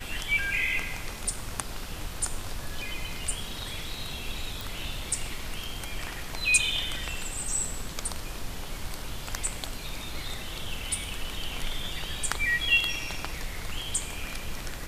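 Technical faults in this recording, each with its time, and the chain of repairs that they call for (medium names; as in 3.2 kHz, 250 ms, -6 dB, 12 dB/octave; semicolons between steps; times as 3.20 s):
4.61 s: pop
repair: de-click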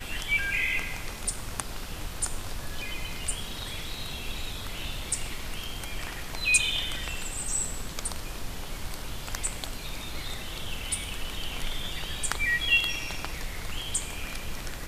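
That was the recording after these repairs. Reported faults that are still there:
nothing left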